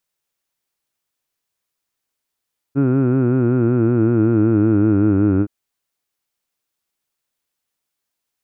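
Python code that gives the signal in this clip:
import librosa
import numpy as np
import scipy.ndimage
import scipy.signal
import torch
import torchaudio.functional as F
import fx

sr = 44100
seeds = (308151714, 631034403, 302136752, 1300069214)

y = fx.formant_vowel(sr, seeds[0], length_s=2.72, hz=134.0, glide_st=-5.5, vibrato_hz=5.3, vibrato_st=0.9, f1_hz=320.0, f2_hz=1400.0, f3_hz=2500.0)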